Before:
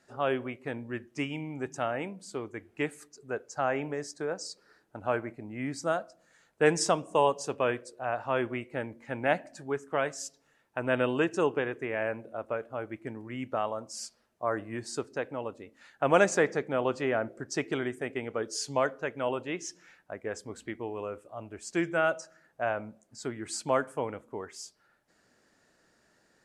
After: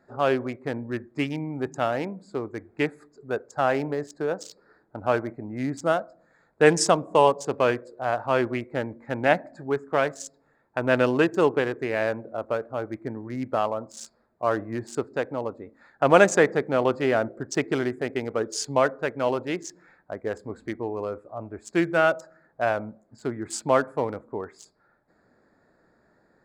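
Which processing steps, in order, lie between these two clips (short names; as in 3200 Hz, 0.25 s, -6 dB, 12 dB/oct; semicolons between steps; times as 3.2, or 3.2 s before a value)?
Wiener smoothing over 15 samples; gain +6.5 dB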